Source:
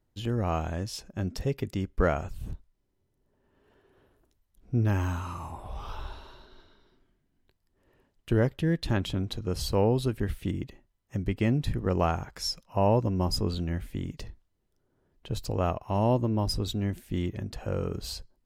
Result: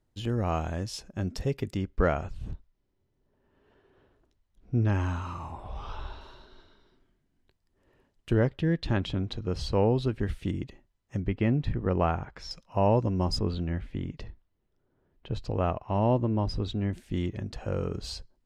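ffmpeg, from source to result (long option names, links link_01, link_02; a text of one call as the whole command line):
ffmpeg -i in.wav -af "asetnsamples=nb_out_samples=441:pad=0,asendcmd='1.77 lowpass f 5300;6.21 lowpass f 9400;8.34 lowpass f 4600;10.2 lowpass f 7600;11.2 lowpass f 2900;12.51 lowpass f 6900;13.39 lowpass f 3400;16.93 lowpass f 7300',lowpass=11000" out.wav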